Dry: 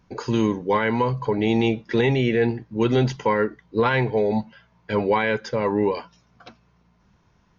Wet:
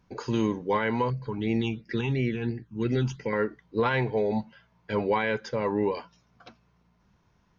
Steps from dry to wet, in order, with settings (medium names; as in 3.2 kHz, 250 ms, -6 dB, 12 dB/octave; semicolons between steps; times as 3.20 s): 1.10–3.33 s: phase shifter stages 8, 2.9 Hz, lowest notch 550–1100 Hz; trim -5 dB